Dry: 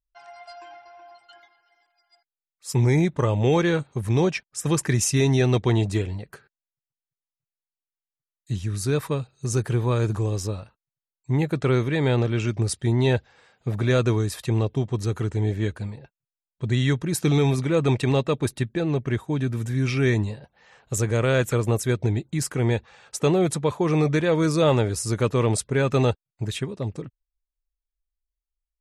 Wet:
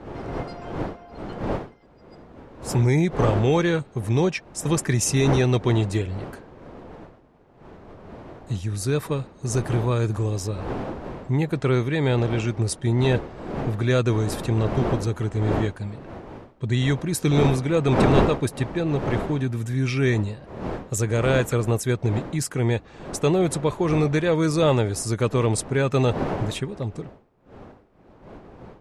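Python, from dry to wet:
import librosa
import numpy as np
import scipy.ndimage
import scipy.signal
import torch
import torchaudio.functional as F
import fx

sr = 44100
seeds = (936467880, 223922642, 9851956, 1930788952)

y = fx.dmg_wind(x, sr, seeds[0], corner_hz=540.0, level_db=-32.0)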